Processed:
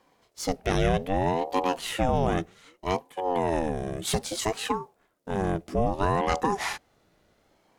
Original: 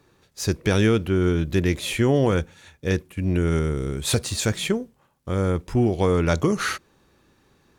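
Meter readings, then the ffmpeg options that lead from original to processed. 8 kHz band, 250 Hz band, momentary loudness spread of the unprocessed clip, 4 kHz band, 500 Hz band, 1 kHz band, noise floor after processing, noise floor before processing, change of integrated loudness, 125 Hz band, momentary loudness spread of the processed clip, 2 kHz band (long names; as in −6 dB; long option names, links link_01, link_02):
−5.0 dB, −7.5 dB, 8 LU, −4.5 dB, −4.0 dB, +5.5 dB, −69 dBFS, −63 dBFS, −5.0 dB, −9.5 dB, 8 LU, −5.0 dB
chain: -af "aeval=exprs='val(0)*sin(2*PI*450*n/s+450*0.45/0.63*sin(2*PI*0.63*n/s))':channel_layout=same,volume=-2dB"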